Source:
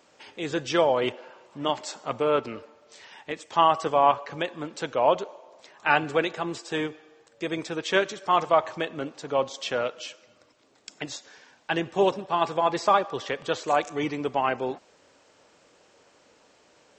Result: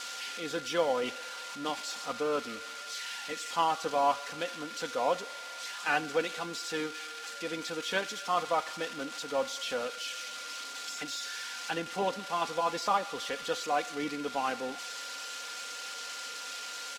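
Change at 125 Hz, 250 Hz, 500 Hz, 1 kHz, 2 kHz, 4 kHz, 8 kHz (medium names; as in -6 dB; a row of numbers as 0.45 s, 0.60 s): -11.0 dB, -7.5 dB, -7.5 dB, -6.5 dB, -4.5 dB, -1.0 dB, +4.0 dB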